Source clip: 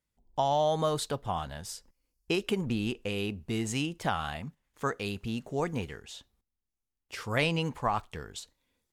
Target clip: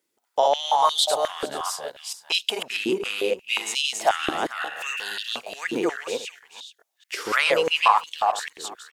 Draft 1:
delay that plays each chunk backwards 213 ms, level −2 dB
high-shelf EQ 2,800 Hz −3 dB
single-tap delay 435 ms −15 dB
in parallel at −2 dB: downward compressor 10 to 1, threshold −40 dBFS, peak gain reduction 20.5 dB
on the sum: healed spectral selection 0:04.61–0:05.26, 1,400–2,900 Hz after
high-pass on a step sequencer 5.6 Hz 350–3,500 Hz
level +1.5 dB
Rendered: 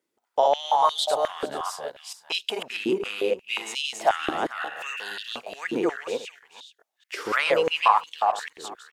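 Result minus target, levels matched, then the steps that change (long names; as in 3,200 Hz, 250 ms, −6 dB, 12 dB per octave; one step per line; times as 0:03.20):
4,000 Hz band −3.0 dB
change: high-shelf EQ 2,800 Hz +5.5 dB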